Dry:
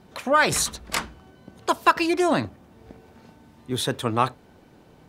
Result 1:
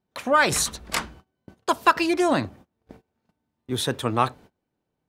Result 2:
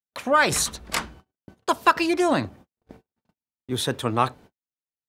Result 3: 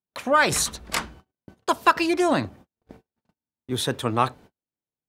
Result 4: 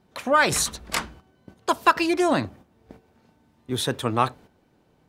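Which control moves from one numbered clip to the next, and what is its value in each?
noise gate, range: −27, −59, −46, −10 decibels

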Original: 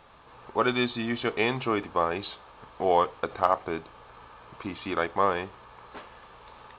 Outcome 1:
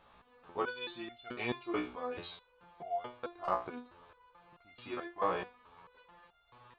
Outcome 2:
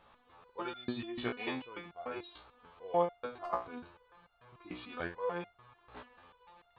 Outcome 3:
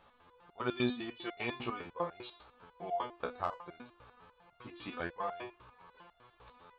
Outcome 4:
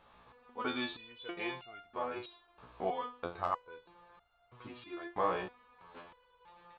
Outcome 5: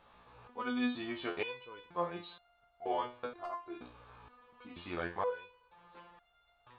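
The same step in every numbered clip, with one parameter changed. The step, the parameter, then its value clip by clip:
step-sequenced resonator, speed: 4.6, 6.8, 10, 3.1, 2.1 Hertz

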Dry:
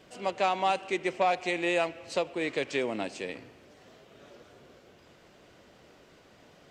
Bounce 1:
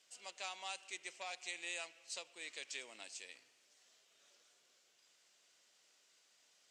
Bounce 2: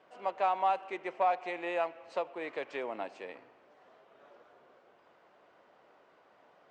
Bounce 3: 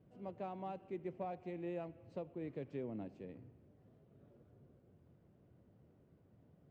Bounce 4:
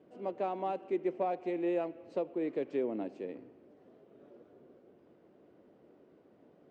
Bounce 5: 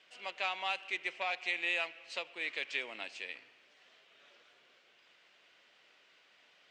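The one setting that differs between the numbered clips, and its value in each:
resonant band-pass, frequency: 7,600, 940, 110, 320, 2,700 Hertz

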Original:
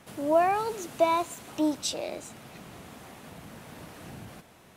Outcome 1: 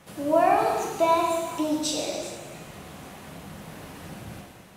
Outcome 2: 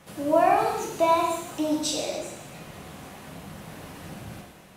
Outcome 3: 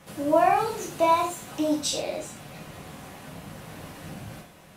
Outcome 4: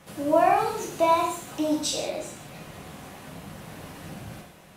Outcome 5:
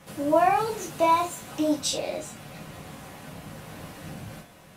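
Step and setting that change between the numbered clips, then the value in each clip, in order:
reverb whose tail is shaped and stops, gate: 500, 340, 140, 220, 90 milliseconds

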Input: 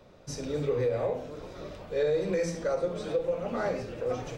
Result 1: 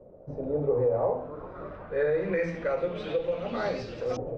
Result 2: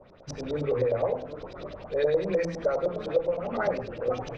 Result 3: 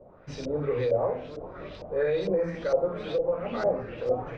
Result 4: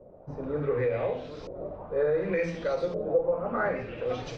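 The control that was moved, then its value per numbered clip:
auto-filter low-pass, speed: 0.24, 9.8, 2.2, 0.68 Hertz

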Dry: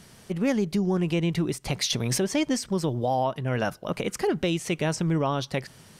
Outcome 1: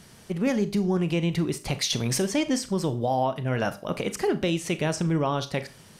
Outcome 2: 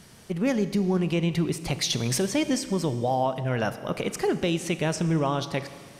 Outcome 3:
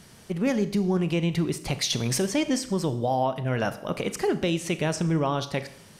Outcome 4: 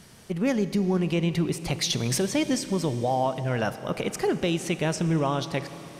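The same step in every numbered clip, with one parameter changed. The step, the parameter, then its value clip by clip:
four-comb reverb, RT60: 0.31, 1.9, 0.67, 4 seconds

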